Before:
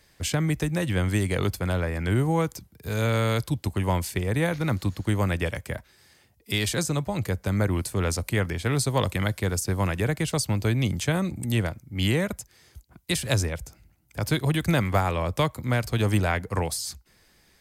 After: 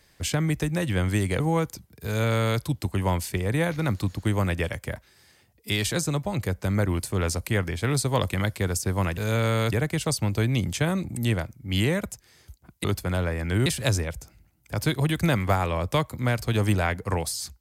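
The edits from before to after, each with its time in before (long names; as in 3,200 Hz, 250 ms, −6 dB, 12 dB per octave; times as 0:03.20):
0:01.40–0:02.22: move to 0:13.11
0:02.87–0:03.42: duplicate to 0:09.99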